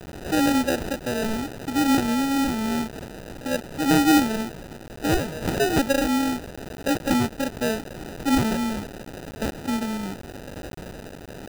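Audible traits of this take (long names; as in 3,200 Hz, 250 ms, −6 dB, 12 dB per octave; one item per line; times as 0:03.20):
a quantiser's noise floor 6 bits, dither triangular
tremolo triangle 0.78 Hz, depth 35%
aliases and images of a low sample rate 1,100 Hz, jitter 0%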